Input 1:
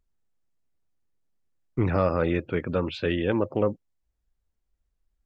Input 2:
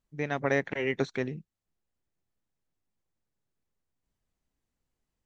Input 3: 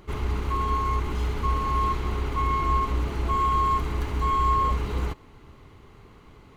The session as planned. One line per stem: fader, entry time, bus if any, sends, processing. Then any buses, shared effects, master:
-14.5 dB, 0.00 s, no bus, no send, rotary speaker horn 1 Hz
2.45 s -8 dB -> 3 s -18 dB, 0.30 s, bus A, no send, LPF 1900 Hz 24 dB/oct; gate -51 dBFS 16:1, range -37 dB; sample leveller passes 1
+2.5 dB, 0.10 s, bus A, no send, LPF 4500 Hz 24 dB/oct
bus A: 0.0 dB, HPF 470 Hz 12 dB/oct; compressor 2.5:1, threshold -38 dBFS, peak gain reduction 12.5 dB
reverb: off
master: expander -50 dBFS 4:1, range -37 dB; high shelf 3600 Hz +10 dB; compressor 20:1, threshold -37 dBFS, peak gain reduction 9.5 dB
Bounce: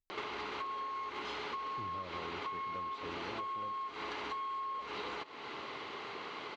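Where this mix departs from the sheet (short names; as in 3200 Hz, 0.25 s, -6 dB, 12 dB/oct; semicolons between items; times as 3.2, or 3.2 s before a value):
stem 3 +2.5 dB -> +12.0 dB; master: missing expander -50 dBFS 4:1, range -37 dB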